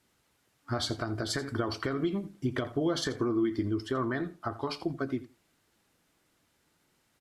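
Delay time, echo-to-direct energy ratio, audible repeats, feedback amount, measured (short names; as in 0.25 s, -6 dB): 84 ms, -16.5 dB, 2, 15%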